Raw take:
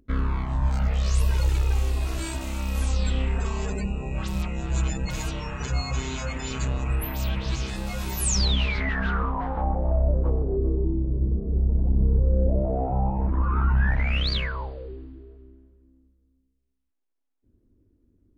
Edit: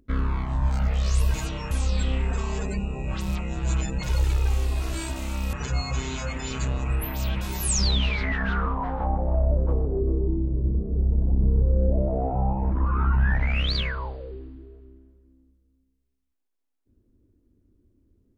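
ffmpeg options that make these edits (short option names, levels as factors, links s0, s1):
-filter_complex "[0:a]asplit=6[s0][s1][s2][s3][s4][s5];[s0]atrim=end=1.342[s6];[s1]atrim=start=5.158:end=5.532[s7];[s2]atrim=start=2.778:end=5.162[s8];[s3]atrim=start=1.338:end=2.782[s9];[s4]atrim=start=5.528:end=7.412[s10];[s5]atrim=start=7.978[s11];[s6][s7]acrossfade=d=0.004:c1=hsin:c2=hsin[s12];[s12][s8]acrossfade=d=0.004:c1=hsin:c2=hsin[s13];[s13][s9]acrossfade=d=0.004:c1=hsin:c2=hsin[s14];[s14][s10]acrossfade=d=0.004:c1=hsin:c2=hsin[s15];[s15][s11]acrossfade=d=0.004:c1=hsin:c2=hsin"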